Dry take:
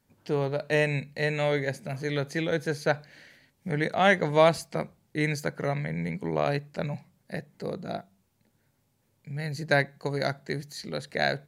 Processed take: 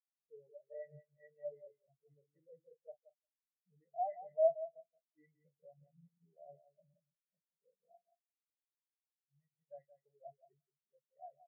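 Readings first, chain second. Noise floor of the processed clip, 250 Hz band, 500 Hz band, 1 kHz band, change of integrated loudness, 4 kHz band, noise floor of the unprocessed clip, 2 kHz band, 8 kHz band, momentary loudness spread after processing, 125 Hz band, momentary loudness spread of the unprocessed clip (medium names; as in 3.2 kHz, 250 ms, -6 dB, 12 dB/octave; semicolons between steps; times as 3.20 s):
under -85 dBFS, under -40 dB, -14.5 dB, -16.0 dB, -10.5 dB, under -40 dB, -71 dBFS, under -40 dB, under -35 dB, 25 LU, under -35 dB, 14 LU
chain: doubling 42 ms -12 dB; saturation -25 dBFS, distortion -7 dB; rippled Chebyshev low-pass 2.8 kHz, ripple 9 dB; on a send: feedback delay 176 ms, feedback 36%, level -3.5 dB; on the sum: spectral contrast expander 4:1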